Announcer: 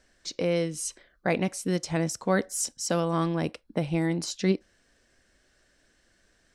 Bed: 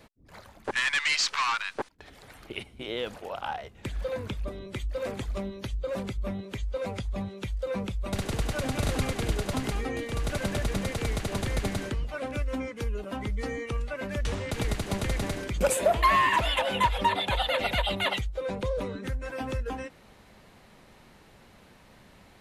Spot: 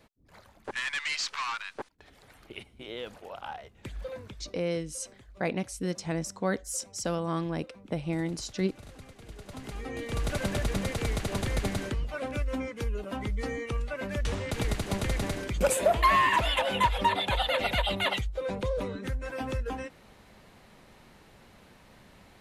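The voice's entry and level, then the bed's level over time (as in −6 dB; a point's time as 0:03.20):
4.15 s, −4.5 dB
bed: 0:04.06 −6 dB
0:04.84 −20.5 dB
0:09.19 −20.5 dB
0:10.13 −0.5 dB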